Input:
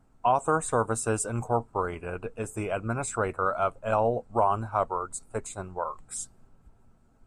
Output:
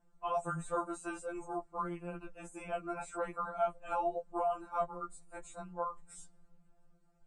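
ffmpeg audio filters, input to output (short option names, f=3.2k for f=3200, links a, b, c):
-filter_complex "[0:a]acrossover=split=3300[a][b];[b]acompressor=threshold=-42dB:ratio=4:attack=1:release=60[c];[a][c]amix=inputs=2:normalize=0,aresample=22050,aresample=44100,afftfilt=real='re*2.83*eq(mod(b,8),0)':imag='im*2.83*eq(mod(b,8),0)':win_size=2048:overlap=0.75,volume=-6dB"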